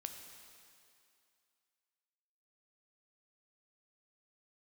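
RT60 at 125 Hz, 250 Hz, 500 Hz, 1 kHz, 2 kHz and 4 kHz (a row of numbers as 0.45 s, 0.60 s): 2.0 s, 2.3 s, 2.4 s, 2.5 s, 2.4 s, 2.4 s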